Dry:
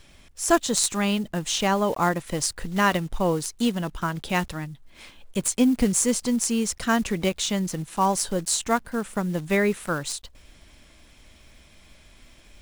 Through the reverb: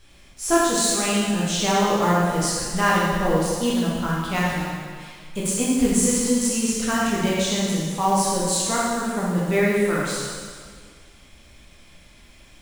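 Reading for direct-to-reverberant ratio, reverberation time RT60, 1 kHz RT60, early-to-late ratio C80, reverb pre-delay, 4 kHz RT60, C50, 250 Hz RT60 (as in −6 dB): −6.5 dB, 1.8 s, 1.8 s, 0.0 dB, 7 ms, 1.7 s, −2.0 dB, 1.9 s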